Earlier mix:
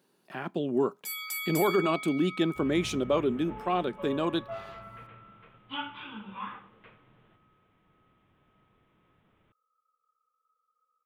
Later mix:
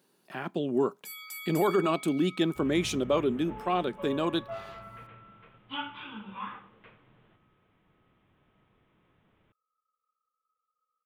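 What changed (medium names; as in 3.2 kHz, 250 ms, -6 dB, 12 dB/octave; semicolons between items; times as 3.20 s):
speech: add treble shelf 4.3 kHz +4 dB; first sound -6.5 dB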